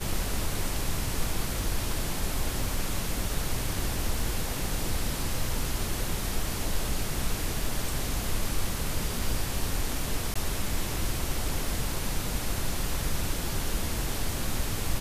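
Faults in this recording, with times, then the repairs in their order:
0:10.34–0:10.36: drop-out 15 ms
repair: repair the gap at 0:10.34, 15 ms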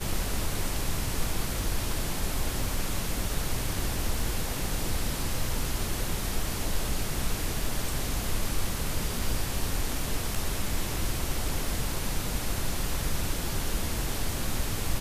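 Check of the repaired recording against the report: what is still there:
none of them is left

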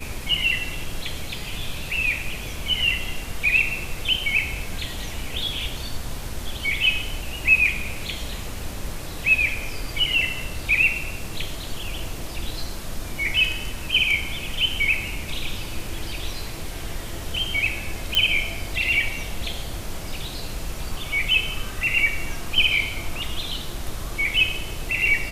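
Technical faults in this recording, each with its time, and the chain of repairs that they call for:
0:18.15: click −5 dBFS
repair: click removal

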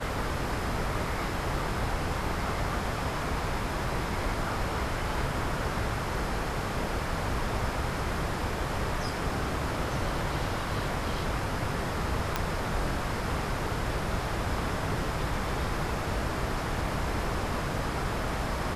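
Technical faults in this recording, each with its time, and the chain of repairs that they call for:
0:12.36: click −12 dBFS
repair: click removal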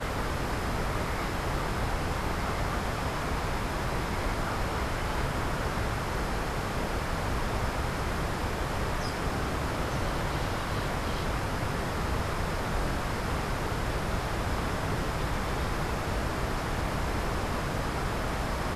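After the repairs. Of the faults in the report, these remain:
none of them is left

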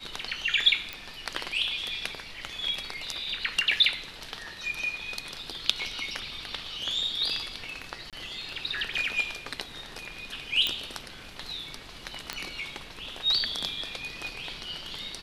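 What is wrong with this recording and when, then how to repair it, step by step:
0:00.93: click −19 dBFS
0:08.10–0:08.13: drop-out 27 ms
0:10.67: click −12 dBFS
0:12.33: click −15 dBFS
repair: click removal
repair the gap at 0:08.10, 27 ms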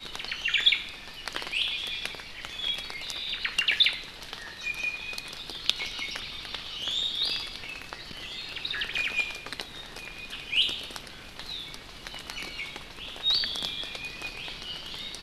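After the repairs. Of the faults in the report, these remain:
0:00.93: click
0:10.67: click

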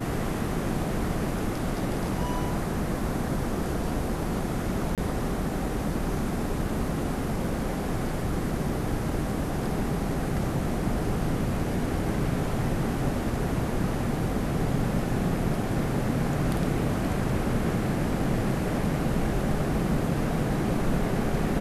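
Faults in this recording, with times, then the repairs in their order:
0:04.95–0:04.98: drop-out 27 ms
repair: repair the gap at 0:04.95, 27 ms

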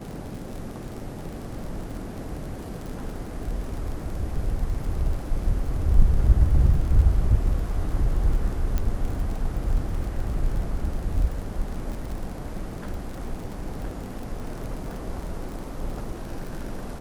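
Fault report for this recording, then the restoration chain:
surface crackle 44 per second −32 dBFS
0:08.78: click −14 dBFS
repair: click removal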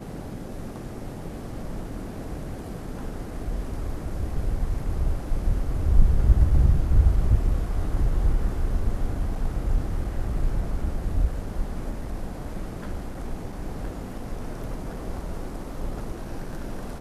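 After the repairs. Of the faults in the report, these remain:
none of them is left

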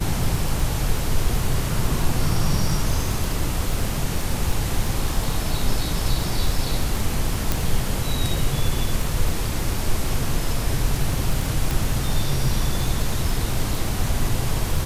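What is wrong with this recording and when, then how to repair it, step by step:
surface crackle 21 per second −23 dBFS
0:07.52: click
0:11.71: click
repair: click removal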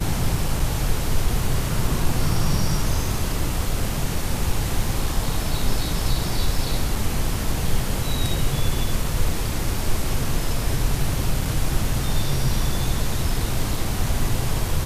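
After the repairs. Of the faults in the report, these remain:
none of them is left

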